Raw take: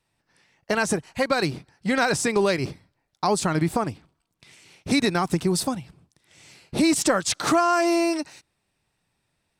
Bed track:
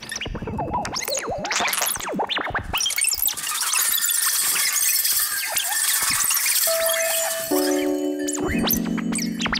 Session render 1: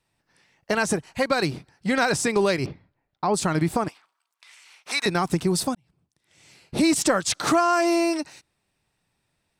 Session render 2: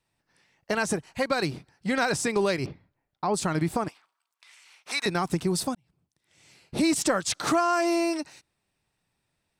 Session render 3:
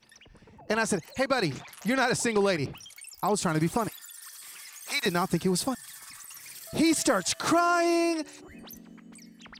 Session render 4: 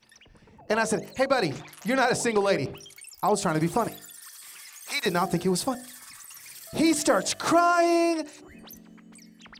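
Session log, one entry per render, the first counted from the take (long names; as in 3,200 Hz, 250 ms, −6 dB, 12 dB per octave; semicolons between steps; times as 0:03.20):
0:02.66–0:03.34: high-frequency loss of the air 300 metres; 0:03.88–0:05.06: high-pass with resonance 1,100 Hz, resonance Q 1.6; 0:05.75–0:06.84: fade in
level −3.5 dB
mix in bed track −25 dB
hum removal 49.84 Hz, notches 15; dynamic equaliser 640 Hz, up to +5 dB, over −37 dBFS, Q 0.9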